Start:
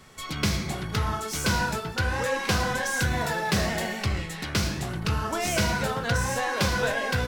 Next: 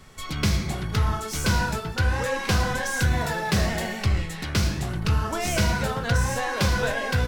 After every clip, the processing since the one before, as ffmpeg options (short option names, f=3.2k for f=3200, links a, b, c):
-af "lowshelf=f=85:g=10.5"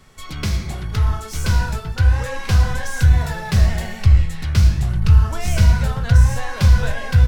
-af "asubboost=boost=7.5:cutoff=110,volume=-1dB"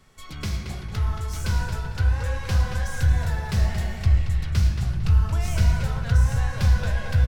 -filter_complex "[0:a]asplit=2[a][b];[b]adelay=226,lowpass=f=5k:p=1,volume=-6.5dB,asplit=2[c][d];[d]adelay=226,lowpass=f=5k:p=1,volume=0.36,asplit=2[e][f];[f]adelay=226,lowpass=f=5k:p=1,volume=0.36,asplit=2[g][h];[h]adelay=226,lowpass=f=5k:p=1,volume=0.36[i];[a][c][e][g][i]amix=inputs=5:normalize=0,volume=-7dB"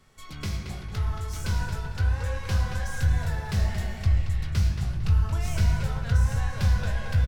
-filter_complex "[0:a]asplit=2[a][b];[b]adelay=21,volume=-10.5dB[c];[a][c]amix=inputs=2:normalize=0,volume=-3dB"